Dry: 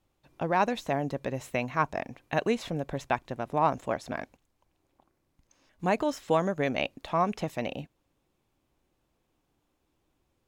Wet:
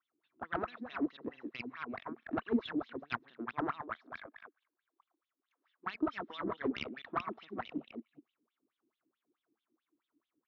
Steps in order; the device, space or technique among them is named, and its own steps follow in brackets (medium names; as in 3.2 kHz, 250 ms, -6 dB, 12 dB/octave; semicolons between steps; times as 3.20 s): chunks repeated in reverse 195 ms, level -5.5 dB; 3.80–5.94 s: high-pass 640 Hz 12 dB/octave; feedback echo behind a high-pass 123 ms, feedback 52%, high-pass 2.2 kHz, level -22.5 dB; wah-wah guitar rig (wah-wah 4.6 Hz 280–3600 Hz, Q 8.1; valve stage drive 29 dB, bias 0.7; cabinet simulation 81–4400 Hz, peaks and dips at 230 Hz +8 dB, 330 Hz +3 dB, 570 Hz -10 dB, 820 Hz -6 dB, 1.3 kHz +6 dB, 2.6 kHz -6 dB); trim +7.5 dB